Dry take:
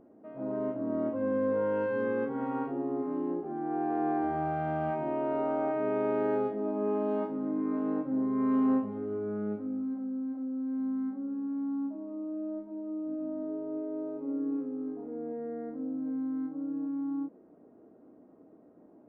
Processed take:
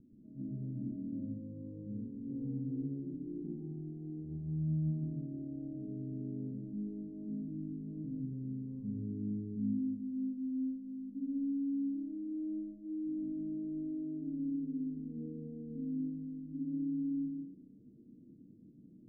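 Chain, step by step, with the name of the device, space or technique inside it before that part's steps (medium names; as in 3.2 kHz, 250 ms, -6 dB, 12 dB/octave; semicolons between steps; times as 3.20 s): club heard from the street (peak limiter -30 dBFS, peak gain reduction 10.5 dB; low-pass 220 Hz 24 dB/octave; reverberation RT60 0.55 s, pre-delay 117 ms, DRR -2 dB); trim +4.5 dB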